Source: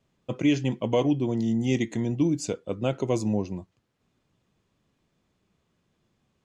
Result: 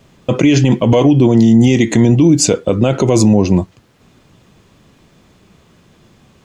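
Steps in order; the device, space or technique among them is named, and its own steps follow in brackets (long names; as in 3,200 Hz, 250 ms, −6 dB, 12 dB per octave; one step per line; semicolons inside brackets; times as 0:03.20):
loud club master (downward compressor 2.5 to 1, threshold −24 dBFS, peak gain reduction 5 dB; hard clipping −15 dBFS, distortion −47 dB; boost into a limiter +24.5 dB)
level −1 dB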